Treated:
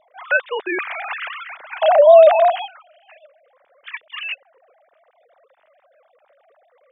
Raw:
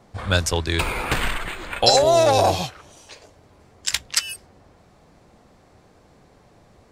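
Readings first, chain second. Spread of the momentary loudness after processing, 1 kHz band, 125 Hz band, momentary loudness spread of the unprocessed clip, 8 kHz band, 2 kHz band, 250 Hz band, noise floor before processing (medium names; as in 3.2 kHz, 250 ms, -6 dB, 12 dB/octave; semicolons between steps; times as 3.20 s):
23 LU, +3.5 dB, under -40 dB, 15 LU, under -40 dB, +4.0 dB, no reading, -55 dBFS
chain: formants replaced by sine waves; trim +4.5 dB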